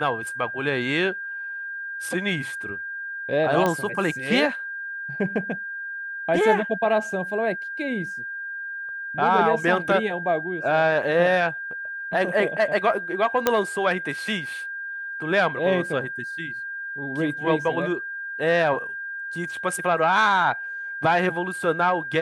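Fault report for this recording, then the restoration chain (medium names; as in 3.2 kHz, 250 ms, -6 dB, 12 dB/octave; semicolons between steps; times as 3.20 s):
whine 1.6 kHz -30 dBFS
3.66 s: pop -10 dBFS
13.47 s: pop -4 dBFS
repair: de-click; band-stop 1.6 kHz, Q 30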